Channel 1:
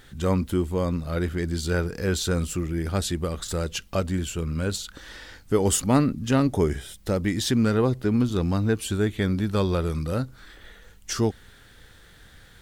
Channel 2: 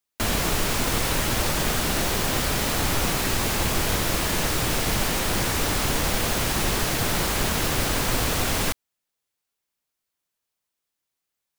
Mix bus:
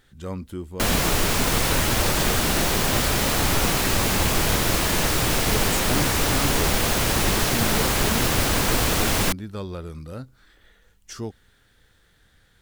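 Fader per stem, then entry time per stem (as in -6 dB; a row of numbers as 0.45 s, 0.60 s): -9.0 dB, +2.5 dB; 0.00 s, 0.60 s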